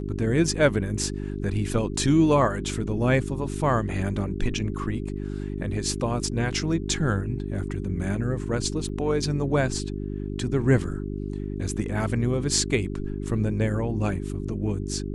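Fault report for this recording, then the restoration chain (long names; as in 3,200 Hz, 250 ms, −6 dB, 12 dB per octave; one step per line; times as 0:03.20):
mains hum 50 Hz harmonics 8 −31 dBFS
0:08.89–0:08.90: drop-out 5.2 ms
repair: hum removal 50 Hz, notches 8
repair the gap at 0:08.89, 5.2 ms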